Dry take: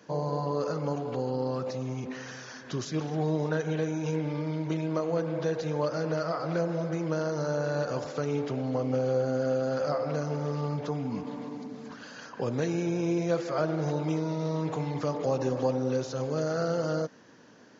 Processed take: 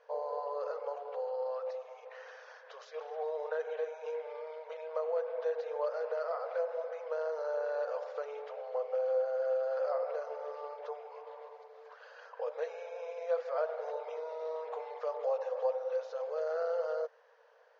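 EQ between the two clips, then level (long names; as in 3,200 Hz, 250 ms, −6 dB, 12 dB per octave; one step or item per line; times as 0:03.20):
linear-phase brick-wall high-pass 440 Hz
high-frequency loss of the air 190 metres
tilt shelving filter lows +4.5 dB, about 1,300 Hz
−5.5 dB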